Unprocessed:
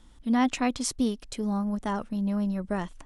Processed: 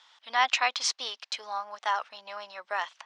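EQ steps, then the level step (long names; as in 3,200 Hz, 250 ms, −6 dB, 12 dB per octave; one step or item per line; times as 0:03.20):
high-pass filter 770 Hz 24 dB per octave
high-frequency loss of the air 210 metres
parametric band 5,500 Hz +12 dB 2.3 octaves
+5.5 dB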